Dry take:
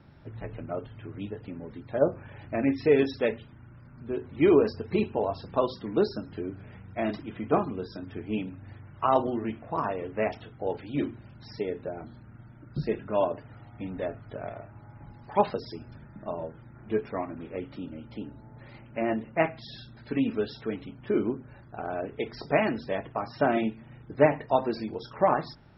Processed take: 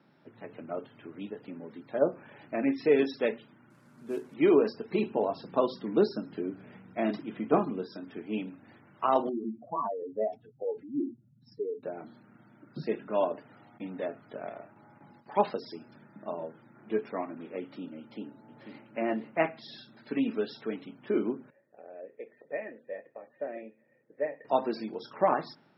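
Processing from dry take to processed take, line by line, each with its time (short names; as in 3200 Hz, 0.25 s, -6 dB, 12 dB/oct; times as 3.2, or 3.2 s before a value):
3.7–4.34 CVSD 64 kbps
5.03–7.82 low shelf 340 Hz +5.5 dB
9.29–11.83 spectral contrast raised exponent 2.8
13.78–15.26 gate with hold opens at -39 dBFS, closes at -43 dBFS
17.99–18.96 echo throw 0.49 s, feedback 40%, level -8 dB
21.5–24.45 vocal tract filter e
whole clip: HPF 180 Hz 24 dB/oct; AGC gain up to 3.5 dB; gain -5.5 dB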